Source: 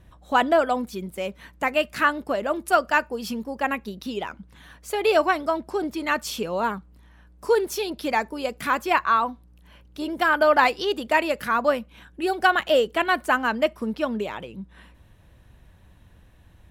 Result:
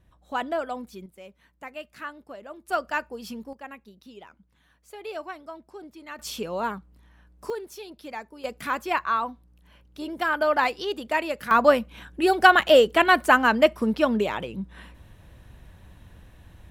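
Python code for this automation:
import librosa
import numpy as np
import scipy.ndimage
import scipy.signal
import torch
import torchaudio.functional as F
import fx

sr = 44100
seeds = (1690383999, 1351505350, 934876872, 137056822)

y = fx.gain(x, sr, db=fx.steps((0.0, -9.0), (1.06, -16.0), (2.69, -7.0), (3.53, -16.0), (6.19, -3.5), (7.5, -13.0), (8.44, -4.5), (11.51, 4.0)))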